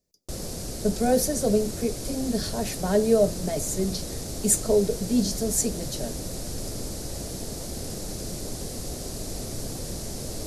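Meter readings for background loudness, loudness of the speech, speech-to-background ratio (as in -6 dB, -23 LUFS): -34.0 LUFS, -25.5 LUFS, 8.5 dB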